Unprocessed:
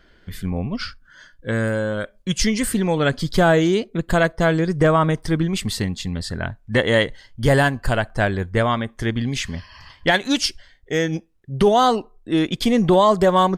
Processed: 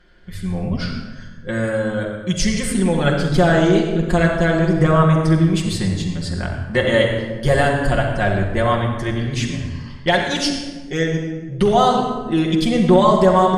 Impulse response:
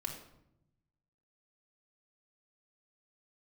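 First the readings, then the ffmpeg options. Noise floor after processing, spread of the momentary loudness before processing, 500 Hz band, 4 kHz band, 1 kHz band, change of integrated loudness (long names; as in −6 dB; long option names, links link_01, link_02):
−34 dBFS, 12 LU, +2.0 dB, 0.0 dB, +1.5 dB, +2.0 dB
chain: -filter_complex "[1:a]atrim=start_sample=2205,asetrate=22050,aresample=44100[link_01];[0:a][link_01]afir=irnorm=-1:irlink=0,volume=-3.5dB"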